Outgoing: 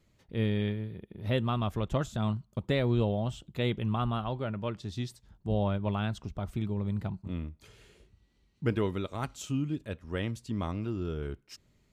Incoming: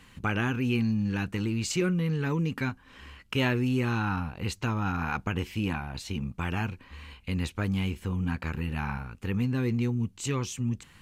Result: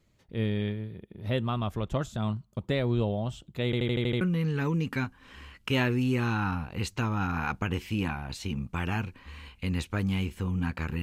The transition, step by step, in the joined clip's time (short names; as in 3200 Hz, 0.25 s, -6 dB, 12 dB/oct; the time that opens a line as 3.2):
outgoing
3.65 stutter in place 0.08 s, 7 plays
4.21 switch to incoming from 1.86 s